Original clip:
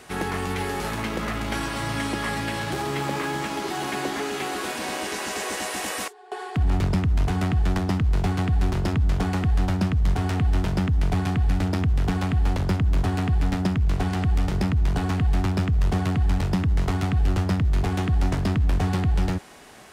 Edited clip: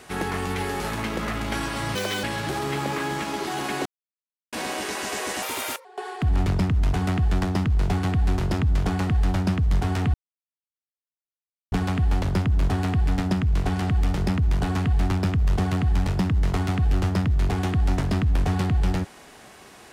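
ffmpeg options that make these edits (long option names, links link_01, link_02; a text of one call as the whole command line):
ffmpeg -i in.wav -filter_complex "[0:a]asplit=9[link_01][link_02][link_03][link_04][link_05][link_06][link_07][link_08][link_09];[link_01]atrim=end=1.954[link_10];[link_02]atrim=start=1.95:end=2.47,asetpts=PTS-STARTPTS,asetrate=80262,aresample=44100[link_11];[link_03]atrim=start=2.466:end=4.09,asetpts=PTS-STARTPTS,afade=type=out:start_time=1.62:duration=0.004:curve=hsin[link_12];[link_04]atrim=start=4.09:end=4.76,asetpts=PTS-STARTPTS,volume=0[link_13];[link_05]atrim=start=4.76:end=5.664,asetpts=PTS-STARTPTS,afade=type=in:duration=0.004:curve=hsin[link_14];[link_06]atrim=start=5.66:end=6.19,asetpts=PTS-STARTPTS,asetrate=55125,aresample=44100,atrim=end_sample=18698,asetpts=PTS-STARTPTS[link_15];[link_07]atrim=start=6.186:end=10.48,asetpts=PTS-STARTPTS,afade=type=out:start_time=4.29:duration=0.004:curve=hsin[link_16];[link_08]atrim=start=10.48:end=12.06,asetpts=PTS-STARTPTS,volume=0[link_17];[link_09]atrim=start=12.06,asetpts=PTS-STARTPTS,afade=type=in:duration=0.004:curve=hsin[link_18];[link_10][link_11]acrossfade=duration=0.004:curve1=hsin:curve2=hsin[link_19];[link_12][link_13][link_14]concat=n=3:v=0:a=1[link_20];[link_19][link_20]acrossfade=duration=0.004:curve1=hsin:curve2=hsin[link_21];[link_21][link_15]acrossfade=duration=0.004:curve1=hsin:curve2=hsin[link_22];[link_16][link_17][link_18]concat=n=3:v=0:a=1[link_23];[link_22][link_23]acrossfade=duration=0.004:curve1=hsin:curve2=hsin" out.wav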